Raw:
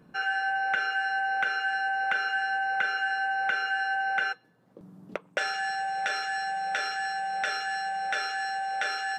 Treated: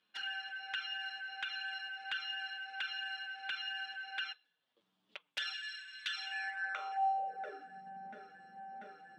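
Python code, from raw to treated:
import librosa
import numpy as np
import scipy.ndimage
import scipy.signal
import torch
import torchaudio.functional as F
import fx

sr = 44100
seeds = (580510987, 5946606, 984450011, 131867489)

y = fx.filter_sweep_bandpass(x, sr, from_hz=3300.0, to_hz=230.0, start_s=6.22, end_s=7.76, q=4.5)
y = fx.env_flanger(y, sr, rest_ms=9.7, full_db=-37.0)
y = fx.spec_erase(y, sr, start_s=5.53, length_s=0.64, low_hz=320.0, high_hz=1000.0)
y = F.gain(torch.from_numpy(y), 6.5).numpy()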